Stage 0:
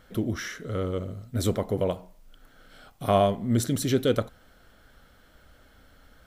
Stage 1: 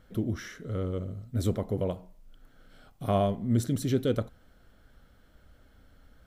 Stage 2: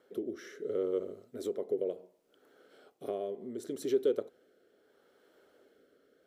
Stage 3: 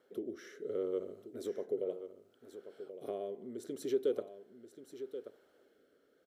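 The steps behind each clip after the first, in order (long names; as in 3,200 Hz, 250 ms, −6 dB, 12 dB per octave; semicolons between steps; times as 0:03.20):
low-shelf EQ 400 Hz +8 dB; level −8 dB
downward compressor 12 to 1, threshold −29 dBFS, peak gain reduction 10 dB; high-pass with resonance 400 Hz, resonance Q 4.9; rotating-speaker cabinet horn 0.7 Hz; level −2.5 dB
single-tap delay 1,081 ms −11.5 dB; level −3.5 dB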